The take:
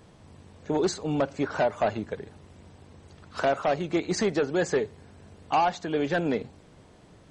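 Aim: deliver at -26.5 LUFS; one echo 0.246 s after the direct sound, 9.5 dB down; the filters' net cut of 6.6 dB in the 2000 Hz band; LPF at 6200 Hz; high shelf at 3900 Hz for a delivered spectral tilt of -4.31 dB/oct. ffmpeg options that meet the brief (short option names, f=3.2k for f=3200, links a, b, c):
-af "lowpass=6.2k,equalizer=f=2k:t=o:g=-8,highshelf=f=3.9k:g=-6,aecho=1:1:246:0.335,volume=2dB"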